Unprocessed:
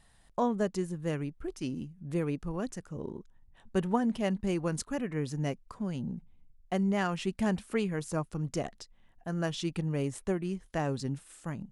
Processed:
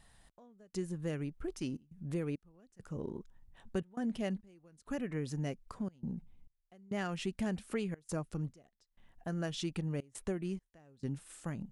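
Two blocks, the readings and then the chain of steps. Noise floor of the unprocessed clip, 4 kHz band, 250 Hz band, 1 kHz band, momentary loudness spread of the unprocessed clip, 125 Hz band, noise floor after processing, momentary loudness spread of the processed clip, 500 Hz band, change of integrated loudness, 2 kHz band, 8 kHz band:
−63 dBFS, −4.5 dB, −6.5 dB, −12.0 dB, 11 LU, −5.5 dB, −80 dBFS, 8 LU, −7.5 dB, −6.0 dB, −7.0 dB, −6.0 dB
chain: dynamic equaliser 990 Hz, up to −6 dB, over −50 dBFS, Q 2.5
downward compressor 2 to 1, threshold −36 dBFS, peak gain reduction 7.5 dB
gate pattern "xx...xxxxxxx.x" 102 BPM −24 dB

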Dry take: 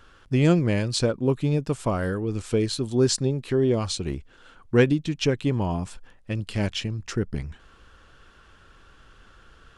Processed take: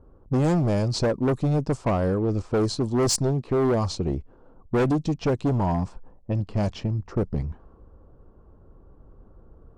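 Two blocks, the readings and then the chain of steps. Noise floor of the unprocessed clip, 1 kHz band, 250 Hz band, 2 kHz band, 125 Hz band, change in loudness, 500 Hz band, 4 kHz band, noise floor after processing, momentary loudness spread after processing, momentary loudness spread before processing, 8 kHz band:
−54 dBFS, +4.5 dB, 0.0 dB, −5.0 dB, +0.5 dB, 0.0 dB, 0.0 dB, −3.5 dB, −54 dBFS, 7 LU, 11 LU, +0.5 dB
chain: harmonic generator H 5 −22 dB, 6 −23 dB, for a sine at −5.5 dBFS
flat-topped bell 2,300 Hz −12.5 dB
in parallel at −11 dB: wave folding −23 dBFS
on the sum: low-pass that shuts in the quiet parts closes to 540 Hz, open at −16.5 dBFS
hard clipping −18.5 dBFS, distortion −12 dB

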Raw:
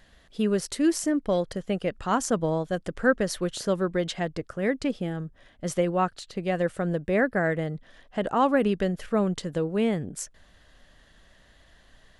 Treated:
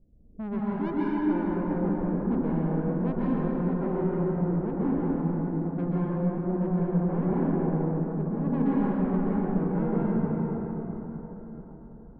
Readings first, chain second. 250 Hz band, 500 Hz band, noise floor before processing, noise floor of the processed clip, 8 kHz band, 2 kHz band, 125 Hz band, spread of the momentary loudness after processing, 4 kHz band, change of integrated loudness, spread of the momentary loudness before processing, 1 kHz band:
+2.5 dB, −5.0 dB, −58 dBFS, −46 dBFS, below −40 dB, −13.0 dB, +5.0 dB, 8 LU, below −20 dB, −0.5 dB, 9 LU, −5.5 dB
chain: inverse Chebyshev low-pass filter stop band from 2,400 Hz, stop band 80 dB
soft clipping −30 dBFS, distortion −8 dB
dense smooth reverb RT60 4.8 s, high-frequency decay 0.45×, pre-delay 115 ms, DRR −8.5 dB
level −1.5 dB

